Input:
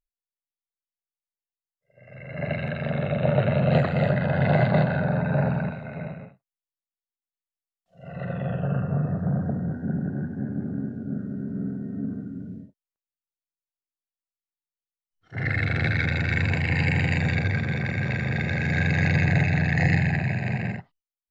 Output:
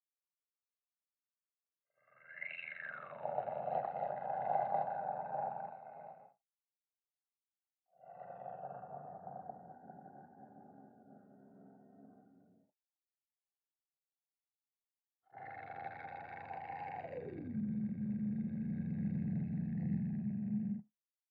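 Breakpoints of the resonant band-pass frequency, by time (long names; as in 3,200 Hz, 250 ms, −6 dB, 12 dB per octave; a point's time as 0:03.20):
resonant band-pass, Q 11
0:02.17 1,200 Hz
0:02.57 2,700 Hz
0:03.29 790 Hz
0:16.96 790 Hz
0:17.58 210 Hz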